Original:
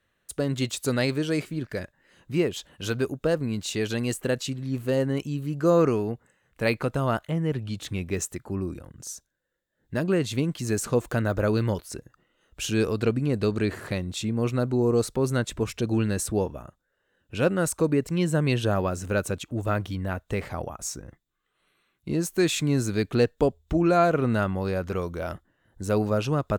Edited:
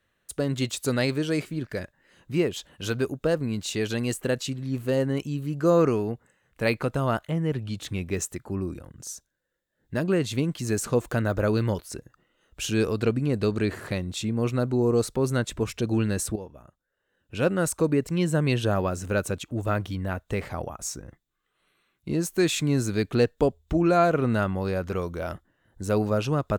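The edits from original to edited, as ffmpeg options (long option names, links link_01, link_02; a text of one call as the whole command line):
ffmpeg -i in.wav -filter_complex "[0:a]asplit=2[link_01][link_02];[link_01]atrim=end=16.36,asetpts=PTS-STARTPTS,afade=type=out:start_time=16.356:duration=0.004:curve=hsin:silence=0.188365[link_03];[link_02]atrim=start=16.36,asetpts=PTS-STARTPTS,afade=type=in:duration=1.21:silence=0.188365[link_04];[link_03][link_04]concat=n=2:v=0:a=1" out.wav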